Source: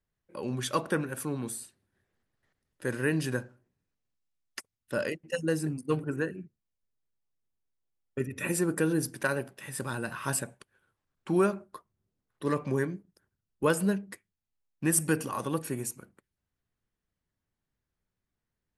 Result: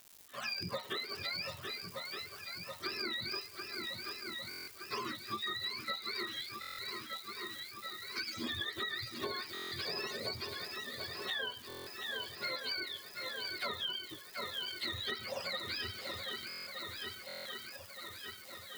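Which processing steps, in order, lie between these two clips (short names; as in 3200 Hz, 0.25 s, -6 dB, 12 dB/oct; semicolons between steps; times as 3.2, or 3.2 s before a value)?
spectrum mirrored in octaves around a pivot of 780 Hz; crackle 280/s -45 dBFS; RIAA curve recording; on a send: swung echo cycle 1.217 s, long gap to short 1.5:1, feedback 57%, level -11 dB; on the sum: dynamic EQ 1500 Hz, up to -4 dB, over -46 dBFS, Q 1.2; compressor 12:1, threshold -36 dBFS, peak gain reduction 13 dB; stuck buffer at 4.49/6.6/9.53/11.68/16.48/17.27, samples 1024, times 7; slew limiter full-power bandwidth 96 Hz; gain +1 dB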